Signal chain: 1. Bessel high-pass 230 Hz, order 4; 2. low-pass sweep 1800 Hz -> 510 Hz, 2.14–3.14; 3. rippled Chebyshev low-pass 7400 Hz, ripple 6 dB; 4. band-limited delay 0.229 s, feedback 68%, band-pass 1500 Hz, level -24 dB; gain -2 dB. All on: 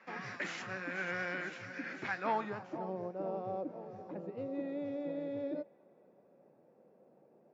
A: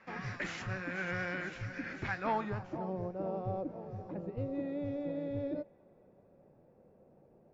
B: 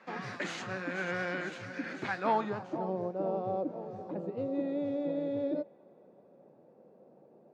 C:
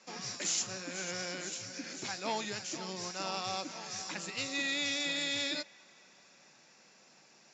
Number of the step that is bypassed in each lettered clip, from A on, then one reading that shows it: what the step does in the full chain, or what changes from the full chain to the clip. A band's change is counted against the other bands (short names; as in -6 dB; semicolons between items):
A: 1, 125 Hz band +9.5 dB; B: 3, 2 kHz band -4.0 dB; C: 2, 4 kHz band +20.0 dB